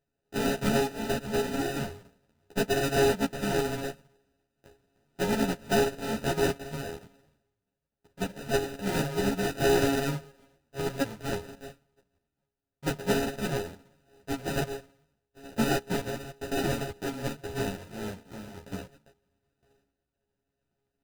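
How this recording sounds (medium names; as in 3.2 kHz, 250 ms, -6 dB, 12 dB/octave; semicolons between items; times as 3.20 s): a buzz of ramps at a fixed pitch in blocks of 64 samples; random-step tremolo; aliases and images of a low sample rate 1.1 kHz, jitter 0%; a shimmering, thickened sound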